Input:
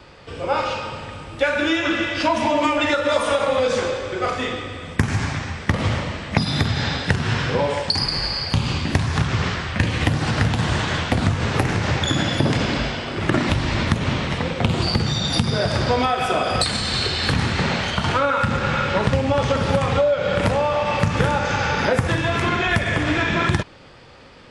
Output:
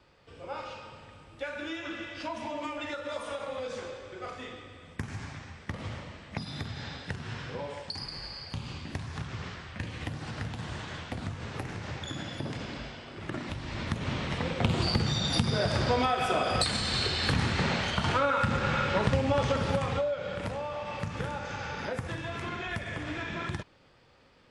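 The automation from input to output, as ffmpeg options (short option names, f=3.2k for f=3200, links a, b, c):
-af "volume=-7dB,afade=t=in:st=13.61:d=0.98:silence=0.316228,afade=t=out:st=19.37:d=0.99:silence=0.375837"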